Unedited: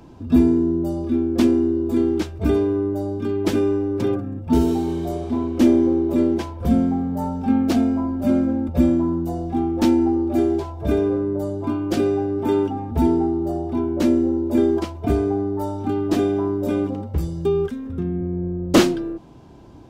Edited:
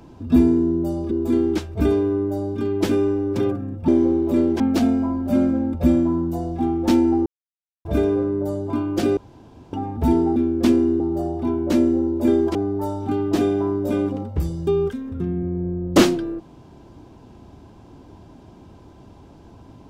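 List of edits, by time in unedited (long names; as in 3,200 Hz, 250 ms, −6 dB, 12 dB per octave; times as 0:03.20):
0:01.11–0:01.75: move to 0:13.30
0:04.52–0:05.70: remove
0:06.42–0:07.54: remove
0:10.20–0:10.79: silence
0:12.11–0:12.67: fill with room tone
0:14.85–0:15.33: remove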